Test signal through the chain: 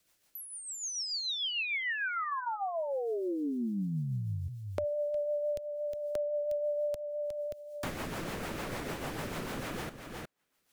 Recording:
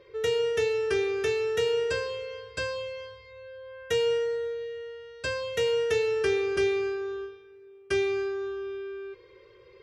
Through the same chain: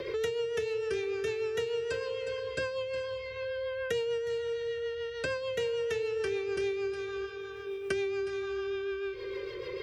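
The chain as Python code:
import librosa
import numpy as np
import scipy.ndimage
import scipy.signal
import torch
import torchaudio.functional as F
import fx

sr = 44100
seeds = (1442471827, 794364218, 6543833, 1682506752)

p1 = fx.rotary(x, sr, hz=6.7)
p2 = p1 + fx.echo_single(p1, sr, ms=361, db=-13.5, dry=0)
p3 = fx.band_squash(p2, sr, depth_pct=100)
y = p3 * 10.0 ** (-4.0 / 20.0)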